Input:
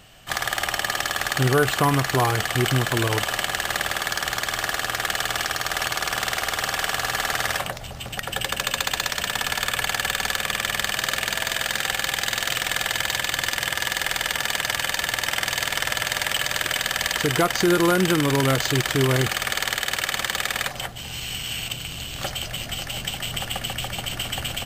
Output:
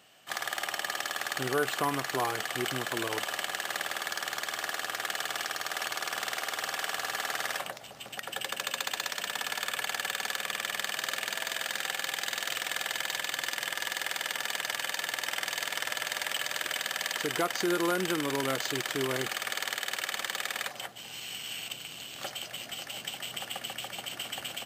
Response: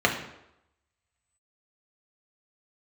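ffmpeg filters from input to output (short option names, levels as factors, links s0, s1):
-af "highpass=250,volume=0.376"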